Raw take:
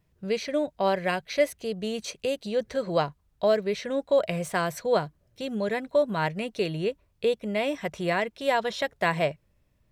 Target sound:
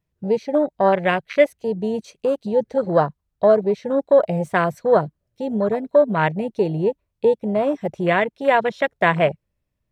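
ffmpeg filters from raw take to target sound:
-af "afwtdn=0.0282,volume=2.51"

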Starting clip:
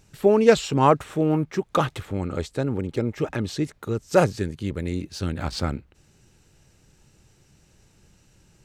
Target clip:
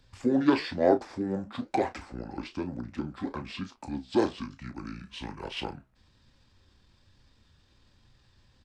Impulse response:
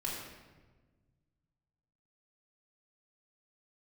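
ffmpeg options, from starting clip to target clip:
-filter_complex "[0:a]acrossover=split=350|660|1900[s0][s1][s2][s3];[s0]acompressor=threshold=0.0112:ratio=16[s4];[s4][s1][s2][s3]amix=inputs=4:normalize=0,asetrate=27781,aresample=44100,atempo=1.5874,flanger=delay=7.4:depth=8.3:regen=72:speed=1.1:shape=sinusoidal,asplit=2[s5][s6];[s6]adelay=33,volume=0.299[s7];[s5][s7]amix=inputs=2:normalize=0"

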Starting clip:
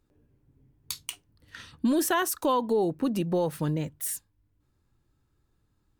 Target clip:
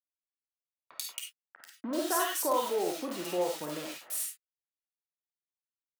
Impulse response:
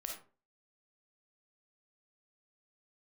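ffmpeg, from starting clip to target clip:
-filter_complex "[0:a]acrusher=bits=5:mix=0:aa=0.000001,highpass=410,acrossover=split=1700[s0][s1];[s1]adelay=90[s2];[s0][s2]amix=inputs=2:normalize=0[s3];[1:a]atrim=start_sample=2205,afade=t=out:st=0.16:d=0.01,atrim=end_sample=7497[s4];[s3][s4]afir=irnorm=-1:irlink=0"

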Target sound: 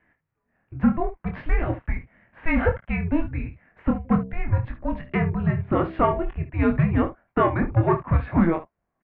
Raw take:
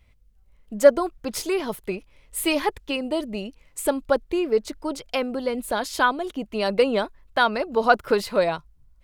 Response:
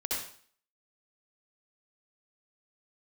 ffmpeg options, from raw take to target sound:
-filter_complex "[0:a]asplit=3[s0][s1][s2];[s0]afade=t=out:st=4.04:d=0.02[s3];[s1]bandreject=f=66.42:t=h:w=4,bandreject=f=132.84:t=h:w=4,bandreject=f=199.26:t=h:w=4,bandreject=f=265.68:t=h:w=4,bandreject=f=332.1:t=h:w=4,bandreject=f=398.52:t=h:w=4,bandreject=f=464.94:t=h:w=4,bandreject=f=531.36:t=h:w=4,bandreject=f=597.78:t=h:w=4,bandreject=f=664.2:t=h:w=4,bandreject=f=730.62:t=h:w=4,bandreject=f=797.04:t=h:w=4,bandreject=f=863.46:t=h:w=4,bandreject=f=929.88:t=h:w=4,bandreject=f=996.3:t=h:w=4,afade=t=in:st=4.04:d=0.02,afade=t=out:st=6.21:d=0.02[s4];[s2]afade=t=in:st=6.21:d=0.02[s5];[s3][s4][s5]amix=inputs=3:normalize=0,alimiter=limit=0.266:level=0:latency=1:release=309,aeval=exprs='(tanh(6.31*val(0)+0.2)-tanh(0.2))/6.31':c=same,asplit=2[s6][s7];[s7]aecho=0:1:24|57|72:0.562|0.126|0.2[s8];[s6][s8]amix=inputs=2:normalize=0,highpass=f=280:t=q:w=0.5412,highpass=f=280:t=q:w=1.307,lowpass=f=2400:t=q:w=0.5176,lowpass=f=2400:t=q:w=0.7071,lowpass=f=2400:t=q:w=1.932,afreqshift=-340,volume=1.78"

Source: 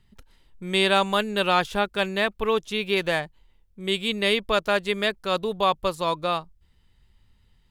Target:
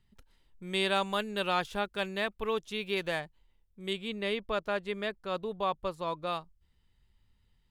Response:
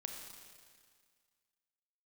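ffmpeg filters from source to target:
-filter_complex "[0:a]asettb=1/sr,asplit=3[s0][s1][s2];[s0]atrim=end=3.934[s3];[s1]atrim=start=3.93:end=6.27,asetpts=PTS-STARTPTS,afade=t=in:d=0.004:c=qsin,afade=t=out:st=2.336:d=0.004:c=qsin,highshelf=f=3500:g=-10.5[s4];[s2]atrim=start=6.266[s5];[s3][s4]acrossfade=d=0.004:c1=hsin:c2=qsin[s6];[s6][s5]acrossfade=d=0.004:c1=qsin:c2=hsin,volume=0.376"

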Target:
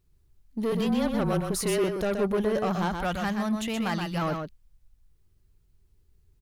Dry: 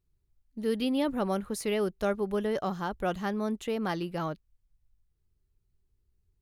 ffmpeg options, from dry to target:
-filter_complex "[0:a]asettb=1/sr,asplit=3[s0][s1][s2];[s0]atrim=end=2.884[s3];[s1]atrim=start=2.88:end=4.22,asetpts=PTS-STARTPTS,afade=t=in:d=0.004:c=qsin,afade=t=out:st=1.336:d=0.004:c=qsin,equalizer=f=410:w=1.4:g=-14[s4];[s2]atrim=start=4.216[s5];[s3][s4]acrossfade=d=0.004:c1=hsin:c2=qsin[s6];[s6][s5]acrossfade=d=0.004:c1=qsin:c2=hsin,asplit=2[s7][s8];[s8]alimiter=level_in=1.12:limit=0.0631:level=0:latency=1:release=20,volume=0.891,volume=1.41[s9];[s7][s9]amix=inputs=2:normalize=0,asoftclip=type=tanh:threshold=0.0668,asettb=1/sr,asplit=3[s10][s11][s12];[s10]atrim=end=0.724[s13];[s11]atrim=start=0.72:end=1.84,asetpts=PTS-STARTPTS,afade=t=in:d=0.004:c=qsin,afade=t=out:st=1.116:d=0.004:c=qsin,afreqshift=-30[s14];[s12]atrim=start=1.836[s15];[s13][s14]acrossfade=d=0.004:c1=hsin:c2=qsin[s16];[s16][s15]acrossfade=d=0.004:c1=qsin:c2=hsin,aecho=1:1:125:0.531,volume=1.12"

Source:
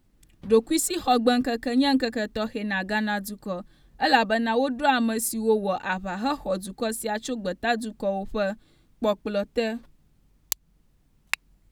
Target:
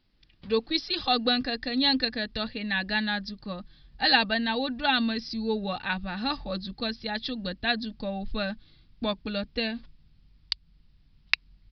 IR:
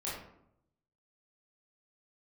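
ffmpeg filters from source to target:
-af "asubboost=boost=3.5:cutoff=220,crystalizer=i=8:c=0,aresample=11025,aresample=44100,volume=0.422"

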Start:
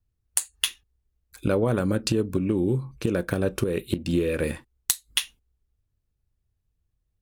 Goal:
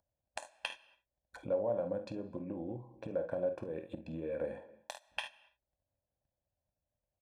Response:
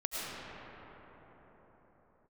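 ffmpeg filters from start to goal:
-filter_complex "[0:a]lowpass=f=580:t=q:w=5.2,aecho=1:1:24|48|69:0.2|0.316|0.168,asetrate=41625,aresample=44100,atempo=1.05946,acompressor=mode=upward:threshold=0.0141:ratio=2.5,agate=range=0.141:threshold=0.00355:ratio=16:detection=peak,aecho=1:1:1.2:0.77,asplit=2[s0][s1];[s1]lowshelf=f=190:g=-8.5[s2];[1:a]atrim=start_sample=2205,afade=t=out:st=0.34:d=0.01,atrim=end_sample=15435[s3];[s2][s3]afir=irnorm=-1:irlink=0,volume=0.0708[s4];[s0][s4]amix=inputs=2:normalize=0,acompressor=threshold=0.0251:ratio=2,aderivative,volume=6.68"

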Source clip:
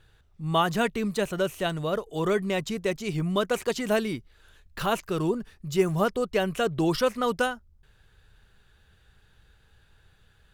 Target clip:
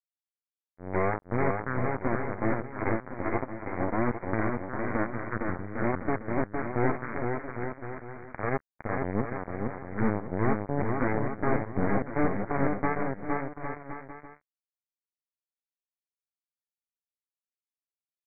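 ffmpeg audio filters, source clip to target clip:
-af "aeval=exprs='(tanh(11.2*val(0)+0.75)-tanh(0.75))/11.2':c=same,aresample=8000,acrusher=bits=3:mix=0:aa=0.5,aresample=44100,asetrate=25442,aresample=44100,aecho=1:1:460|805|1064|1258|1403:0.631|0.398|0.251|0.158|0.1"

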